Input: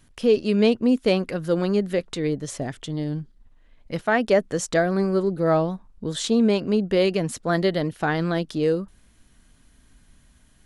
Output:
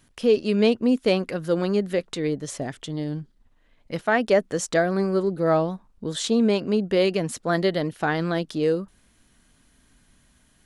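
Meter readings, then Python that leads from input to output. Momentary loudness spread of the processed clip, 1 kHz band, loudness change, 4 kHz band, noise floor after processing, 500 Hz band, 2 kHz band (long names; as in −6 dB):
11 LU, 0.0 dB, −0.5 dB, 0.0 dB, −61 dBFS, −0.5 dB, 0.0 dB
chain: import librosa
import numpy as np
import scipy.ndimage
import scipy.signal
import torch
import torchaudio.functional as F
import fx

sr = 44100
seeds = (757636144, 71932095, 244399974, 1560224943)

y = fx.low_shelf(x, sr, hz=100.0, db=-8.0)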